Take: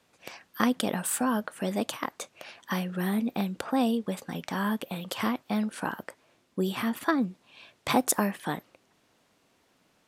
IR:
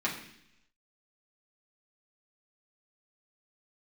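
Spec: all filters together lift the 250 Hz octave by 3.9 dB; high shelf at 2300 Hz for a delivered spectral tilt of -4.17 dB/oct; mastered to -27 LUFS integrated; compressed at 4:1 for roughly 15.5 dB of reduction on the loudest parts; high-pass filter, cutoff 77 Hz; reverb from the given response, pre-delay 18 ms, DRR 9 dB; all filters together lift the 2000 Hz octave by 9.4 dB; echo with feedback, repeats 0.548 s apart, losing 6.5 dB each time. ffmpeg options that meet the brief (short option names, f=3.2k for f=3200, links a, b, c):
-filter_complex "[0:a]highpass=77,equalizer=f=250:t=o:g=4.5,equalizer=f=2k:t=o:g=9,highshelf=f=2.3k:g=5.5,acompressor=threshold=-34dB:ratio=4,aecho=1:1:548|1096|1644|2192|2740|3288:0.473|0.222|0.105|0.0491|0.0231|0.0109,asplit=2[a][b];[1:a]atrim=start_sample=2205,adelay=18[c];[b][c]afir=irnorm=-1:irlink=0,volume=-17dB[d];[a][d]amix=inputs=2:normalize=0,volume=8dB"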